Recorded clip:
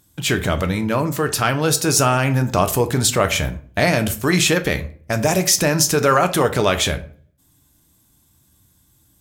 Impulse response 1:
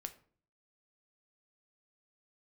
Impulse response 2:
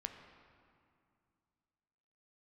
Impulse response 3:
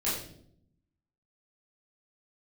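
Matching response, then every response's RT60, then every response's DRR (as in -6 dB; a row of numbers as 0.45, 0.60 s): 1; 0.50, 2.3, 0.65 s; 8.0, 5.0, -9.5 dB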